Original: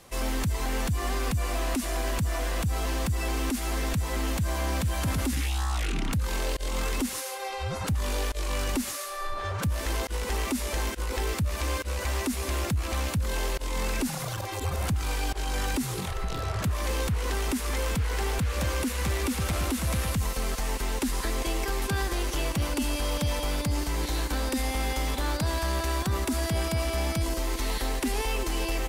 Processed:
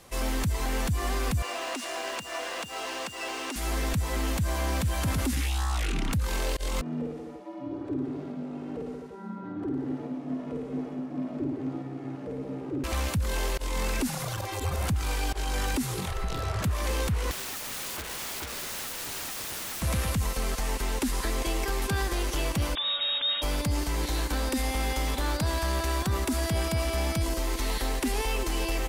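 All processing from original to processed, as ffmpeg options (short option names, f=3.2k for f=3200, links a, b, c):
-filter_complex "[0:a]asettb=1/sr,asplit=3[a][b][c];[a]atrim=end=1.424[d];[b]atrim=start=1.42:end=3.56,asetpts=PTS-STARTPTS,afade=t=in:d=0.004:c=qsin,afade=t=out:st=2.136:d=0.004:c=qsin,highpass=450,lowpass=7.7k,acrusher=bits=9:dc=4:mix=0:aa=0.000001,aeval=exprs='val(0)+0.00708*sin(2*PI*2800*n/s)':c=same[e];[c]atrim=start=3.556[f];[d][e]acrossfade=d=0.004:c1=hsin:c2=qsin[g];[g][f]acrossfade=d=0.004:c1=qsin:c2=hsin,asettb=1/sr,asplit=3[h][i][j];[h]atrim=end=6.814[k];[i]atrim=start=6.81:end=12.84,asetpts=PTS-STARTPTS,afade=t=in:d=0.004:c=qsin,afade=t=out:st=6.026:d=0.004:c=qsin,aeval=exprs='val(0)*sin(2*PI*200*n/s)':c=same,bandpass=f=320:t=q:w=1.7,aecho=1:1:50|107.5|173.6|249.7|337.1:0.794|0.631|0.501|0.398|0.316,atrim=end_sample=265923[l];[j]atrim=start=12.836[m];[k][l]acrossfade=d=0.004:c1=hsin:c2=qsin[n];[n][m]acrossfade=d=0.004:c1=qsin:c2=hsin,asettb=1/sr,asplit=3[o][p][q];[o]atrim=end=17.314[r];[p]atrim=start=17.31:end=19.82,asetpts=PTS-STARTPTS,afade=t=in:d=0.004:c=qsin,afade=t=out:st=2.506:d=0.004:c=qsin,highpass=160,aeval=exprs='(mod(35.5*val(0)+1,2)-1)/35.5':c=same[s];[q]atrim=start=19.816[t];[r][s]acrossfade=d=0.004:c1=hsin:c2=qsin[u];[u][t]acrossfade=d=0.004:c1=qsin:c2=hsin,asettb=1/sr,asplit=3[v][w][x];[v]atrim=end=22.754[y];[w]atrim=start=22.75:end=23.42,asetpts=PTS-STARTPTS,afade=t=in:d=0.004:c=qsin,afade=t=out:st=0.666:d=0.004:c=qsin,equalizer=f=490:w=0.4:g=-4,lowpass=f=3.2k:t=q:w=0.5098,lowpass=f=3.2k:t=q:w=0.6013,lowpass=f=3.2k:t=q:w=0.9,lowpass=f=3.2k:t=q:w=2.563,afreqshift=-3800[z];[x]atrim=start=23.416[aa];[y][z]acrossfade=d=0.004:c1=hsin:c2=qsin[ab];[ab][aa]acrossfade=d=0.004:c1=qsin:c2=hsin"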